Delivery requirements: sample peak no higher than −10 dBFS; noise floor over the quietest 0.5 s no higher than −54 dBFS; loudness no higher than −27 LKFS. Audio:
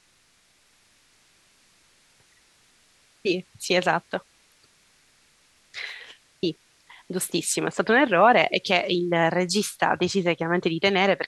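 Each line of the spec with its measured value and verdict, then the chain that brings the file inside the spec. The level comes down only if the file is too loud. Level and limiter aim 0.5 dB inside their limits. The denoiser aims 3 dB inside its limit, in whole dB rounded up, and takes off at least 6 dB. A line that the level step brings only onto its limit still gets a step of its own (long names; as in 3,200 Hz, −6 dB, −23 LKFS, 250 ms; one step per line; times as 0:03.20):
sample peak −4.5 dBFS: out of spec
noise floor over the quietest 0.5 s −62 dBFS: in spec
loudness −23.0 LKFS: out of spec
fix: level −4.5 dB
brickwall limiter −10.5 dBFS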